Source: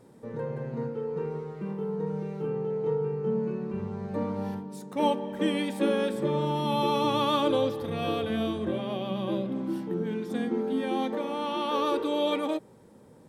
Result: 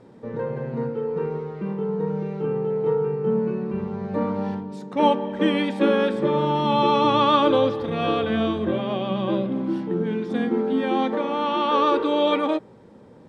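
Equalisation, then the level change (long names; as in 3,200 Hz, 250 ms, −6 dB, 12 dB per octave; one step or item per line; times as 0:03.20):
low-pass filter 4,300 Hz 12 dB per octave
mains-hum notches 50/100/150 Hz
dynamic equaliser 1,300 Hz, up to +4 dB, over −41 dBFS, Q 1.5
+6.0 dB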